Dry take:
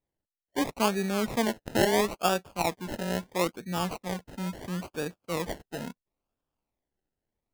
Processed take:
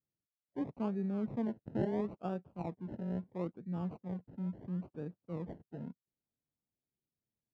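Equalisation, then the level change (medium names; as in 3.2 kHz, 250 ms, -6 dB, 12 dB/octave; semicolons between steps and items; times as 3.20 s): band-pass filter 130 Hz, Q 1.2; distance through air 62 m; bass shelf 130 Hz -9 dB; +1.5 dB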